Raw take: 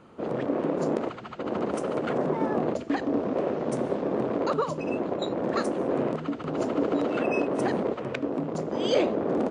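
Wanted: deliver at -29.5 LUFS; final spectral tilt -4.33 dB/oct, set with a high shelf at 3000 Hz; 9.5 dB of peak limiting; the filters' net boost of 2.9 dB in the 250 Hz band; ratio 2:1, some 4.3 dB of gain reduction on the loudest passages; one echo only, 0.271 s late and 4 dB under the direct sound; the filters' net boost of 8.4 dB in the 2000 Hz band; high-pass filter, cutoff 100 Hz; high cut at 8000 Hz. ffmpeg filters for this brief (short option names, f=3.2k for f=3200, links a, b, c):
-af "highpass=100,lowpass=8k,equalizer=f=250:t=o:g=3.5,equalizer=f=2k:t=o:g=7.5,highshelf=f=3k:g=9,acompressor=threshold=-26dB:ratio=2,alimiter=limit=-19.5dB:level=0:latency=1,aecho=1:1:271:0.631,volume=-1dB"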